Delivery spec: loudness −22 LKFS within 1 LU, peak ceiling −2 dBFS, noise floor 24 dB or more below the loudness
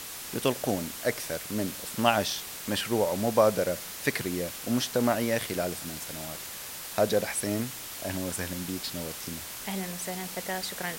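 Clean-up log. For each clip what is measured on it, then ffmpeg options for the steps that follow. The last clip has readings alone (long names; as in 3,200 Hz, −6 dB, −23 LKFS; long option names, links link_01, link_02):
background noise floor −40 dBFS; target noise floor −54 dBFS; integrated loudness −30.0 LKFS; sample peak −6.5 dBFS; target loudness −22.0 LKFS
→ -af "afftdn=noise_reduction=14:noise_floor=-40"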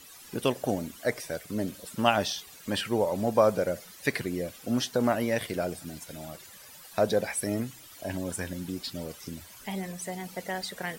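background noise floor −50 dBFS; target noise floor −55 dBFS
→ -af "afftdn=noise_reduction=6:noise_floor=-50"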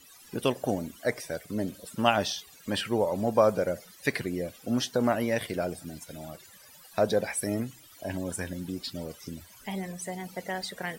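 background noise floor −53 dBFS; target noise floor −55 dBFS
→ -af "afftdn=noise_reduction=6:noise_floor=-53"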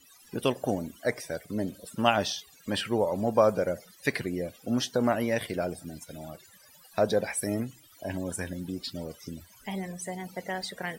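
background noise floor −57 dBFS; integrated loudness −30.5 LKFS; sample peak −7.0 dBFS; target loudness −22.0 LKFS
→ -af "volume=8.5dB,alimiter=limit=-2dB:level=0:latency=1"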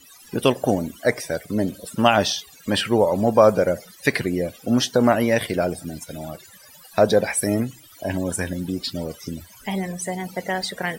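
integrated loudness −22.0 LKFS; sample peak −2.0 dBFS; background noise floor −48 dBFS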